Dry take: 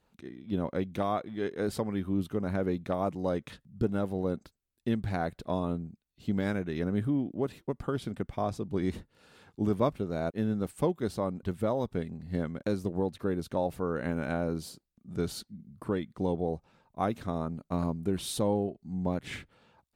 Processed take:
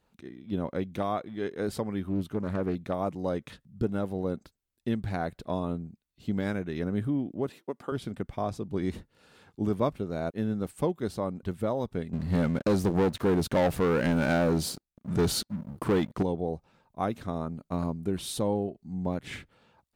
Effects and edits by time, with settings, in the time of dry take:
2.07–2.75 Doppler distortion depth 0.29 ms
7.49–7.92 HPF 280 Hz
12.13–16.23 sample leveller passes 3

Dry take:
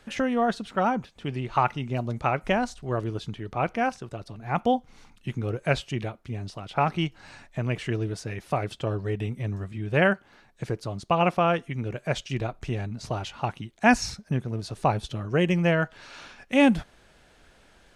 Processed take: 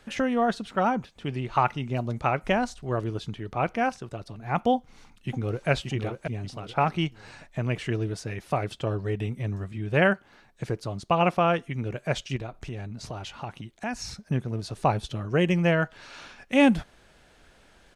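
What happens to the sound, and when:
4.75–5.69 echo throw 0.58 s, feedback 30%, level -5 dB
12.36–14.21 compressor 2.5:1, threshold -34 dBFS

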